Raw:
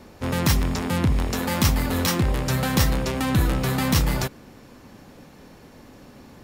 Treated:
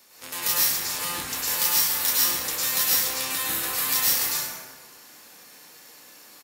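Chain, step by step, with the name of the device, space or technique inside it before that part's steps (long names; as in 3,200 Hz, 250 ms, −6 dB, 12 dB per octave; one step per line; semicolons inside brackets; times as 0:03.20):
first difference
double-tracking delay 31 ms −13 dB
parallel compression (in parallel at −0.5 dB: downward compressor, threshold −38 dBFS, peak gain reduction 16 dB)
on the sum: dense smooth reverb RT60 1.6 s, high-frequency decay 0.55×, pre-delay 90 ms, DRR −8.5 dB
level −1.5 dB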